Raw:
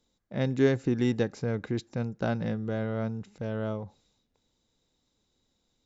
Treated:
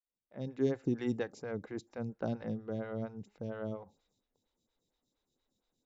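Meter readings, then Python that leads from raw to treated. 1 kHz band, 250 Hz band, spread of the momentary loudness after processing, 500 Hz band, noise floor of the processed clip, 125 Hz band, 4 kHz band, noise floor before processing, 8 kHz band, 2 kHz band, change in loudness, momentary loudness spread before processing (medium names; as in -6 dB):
-8.0 dB, -7.5 dB, 10 LU, -7.0 dB, under -85 dBFS, -10.5 dB, -12.0 dB, -76 dBFS, no reading, -10.5 dB, -8.0 dB, 11 LU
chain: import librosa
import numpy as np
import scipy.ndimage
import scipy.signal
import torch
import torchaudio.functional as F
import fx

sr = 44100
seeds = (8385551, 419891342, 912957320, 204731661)

y = fx.fade_in_head(x, sr, length_s=0.83)
y = fx.stagger_phaser(y, sr, hz=4.3)
y = y * 10.0 ** (-4.5 / 20.0)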